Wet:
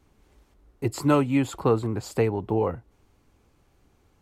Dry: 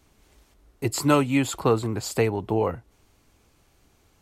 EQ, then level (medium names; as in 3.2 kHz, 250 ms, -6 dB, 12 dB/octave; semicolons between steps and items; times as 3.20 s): treble shelf 2 kHz -9 dB; band-stop 650 Hz, Q 16; 0.0 dB